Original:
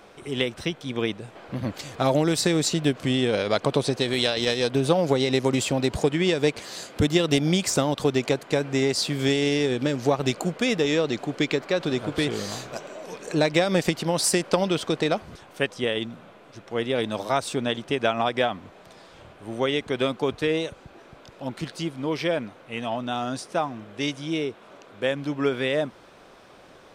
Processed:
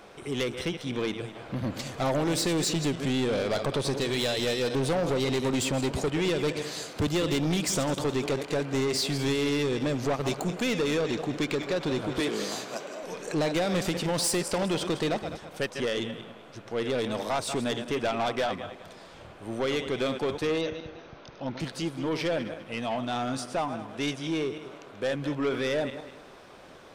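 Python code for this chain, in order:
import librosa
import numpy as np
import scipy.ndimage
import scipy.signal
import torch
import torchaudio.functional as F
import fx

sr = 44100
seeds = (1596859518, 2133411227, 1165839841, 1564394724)

y = fx.reverse_delay_fb(x, sr, ms=102, feedback_pct=51, wet_db=-12.0)
y = fx.highpass(y, sr, hz=170.0, slope=24, at=(12.2, 13.03))
y = 10.0 ** (-22.5 / 20.0) * np.tanh(y / 10.0 ** (-22.5 / 20.0))
y = fx.brickwall_lowpass(y, sr, high_hz=6500.0, at=(20.61, 21.6))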